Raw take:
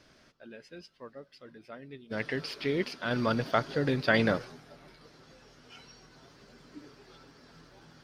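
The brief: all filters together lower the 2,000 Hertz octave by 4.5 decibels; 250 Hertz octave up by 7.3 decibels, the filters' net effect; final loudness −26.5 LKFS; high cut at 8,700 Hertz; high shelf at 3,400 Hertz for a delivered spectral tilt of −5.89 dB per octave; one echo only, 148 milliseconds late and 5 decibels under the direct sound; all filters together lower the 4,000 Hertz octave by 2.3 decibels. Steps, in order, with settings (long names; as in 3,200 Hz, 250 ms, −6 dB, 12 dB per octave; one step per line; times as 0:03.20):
low-pass filter 8,700 Hz
parametric band 250 Hz +8.5 dB
parametric band 2,000 Hz −7 dB
high-shelf EQ 3,400 Hz +6 dB
parametric band 4,000 Hz −5 dB
single-tap delay 148 ms −5 dB
level −0.5 dB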